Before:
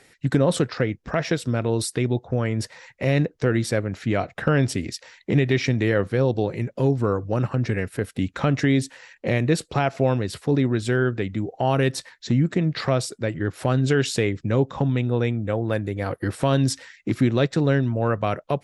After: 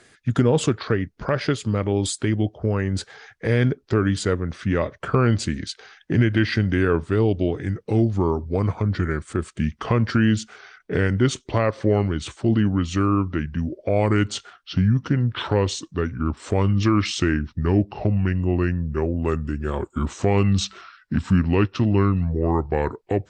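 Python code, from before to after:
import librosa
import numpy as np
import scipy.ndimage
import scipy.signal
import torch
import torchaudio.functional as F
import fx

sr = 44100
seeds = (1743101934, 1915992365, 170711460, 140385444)

y = fx.speed_glide(x, sr, from_pct=89, to_pct=71)
y = F.gain(torch.from_numpy(y), 1.0).numpy()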